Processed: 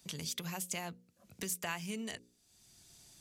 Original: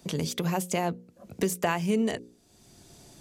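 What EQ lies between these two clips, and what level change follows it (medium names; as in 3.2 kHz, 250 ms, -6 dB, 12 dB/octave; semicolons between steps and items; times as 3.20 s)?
amplifier tone stack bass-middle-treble 5-5-5; +2.5 dB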